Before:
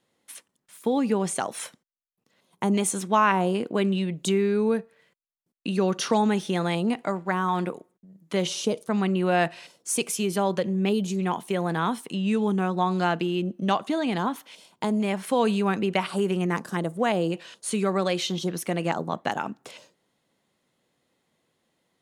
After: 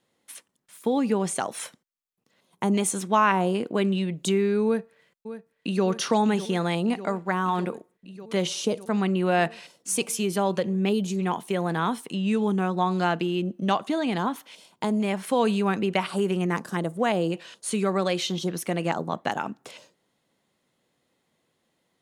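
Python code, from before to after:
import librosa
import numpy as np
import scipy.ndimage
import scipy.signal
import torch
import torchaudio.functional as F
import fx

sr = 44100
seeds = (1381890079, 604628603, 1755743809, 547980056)

y = fx.echo_throw(x, sr, start_s=4.65, length_s=1.2, ms=600, feedback_pct=80, wet_db=-13.0)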